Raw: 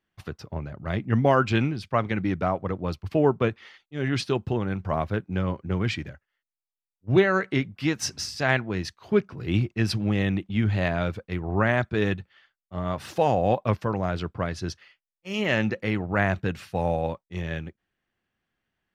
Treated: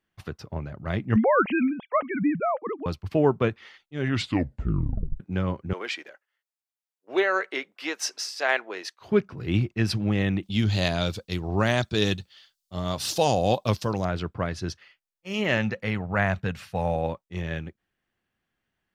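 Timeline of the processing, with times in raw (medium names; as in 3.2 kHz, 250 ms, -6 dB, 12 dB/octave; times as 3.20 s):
1.16–2.86 s: formants replaced by sine waves
4.07 s: tape stop 1.13 s
5.73–9.01 s: high-pass 410 Hz 24 dB/octave
10.43–14.05 s: resonant high shelf 2.9 kHz +13.5 dB, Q 1.5
15.57–16.96 s: peaking EQ 330 Hz -10 dB 0.52 oct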